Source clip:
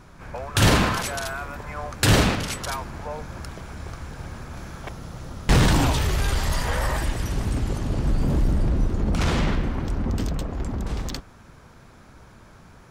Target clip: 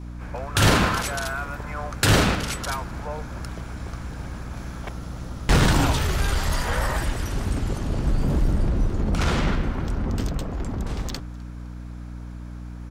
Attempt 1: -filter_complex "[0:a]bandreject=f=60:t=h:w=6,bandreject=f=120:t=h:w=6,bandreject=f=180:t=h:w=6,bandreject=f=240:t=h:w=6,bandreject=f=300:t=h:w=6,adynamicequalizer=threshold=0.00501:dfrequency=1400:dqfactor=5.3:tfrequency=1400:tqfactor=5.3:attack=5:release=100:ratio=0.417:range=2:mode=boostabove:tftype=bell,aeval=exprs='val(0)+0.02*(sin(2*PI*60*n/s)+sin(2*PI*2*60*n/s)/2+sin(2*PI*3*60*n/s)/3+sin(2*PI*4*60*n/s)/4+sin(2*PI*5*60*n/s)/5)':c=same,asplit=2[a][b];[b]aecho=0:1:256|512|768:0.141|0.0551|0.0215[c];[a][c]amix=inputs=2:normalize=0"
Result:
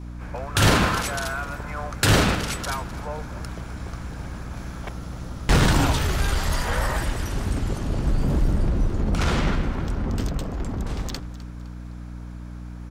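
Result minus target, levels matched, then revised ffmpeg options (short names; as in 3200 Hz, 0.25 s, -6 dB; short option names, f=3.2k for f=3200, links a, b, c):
echo-to-direct +9 dB
-filter_complex "[0:a]bandreject=f=60:t=h:w=6,bandreject=f=120:t=h:w=6,bandreject=f=180:t=h:w=6,bandreject=f=240:t=h:w=6,bandreject=f=300:t=h:w=6,adynamicequalizer=threshold=0.00501:dfrequency=1400:dqfactor=5.3:tfrequency=1400:tqfactor=5.3:attack=5:release=100:ratio=0.417:range=2:mode=boostabove:tftype=bell,aeval=exprs='val(0)+0.02*(sin(2*PI*60*n/s)+sin(2*PI*2*60*n/s)/2+sin(2*PI*3*60*n/s)/3+sin(2*PI*4*60*n/s)/4+sin(2*PI*5*60*n/s)/5)':c=same,asplit=2[a][b];[b]aecho=0:1:256|512:0.0501|0.0195[c];[a][c]amix=inputs=2:normalize=0"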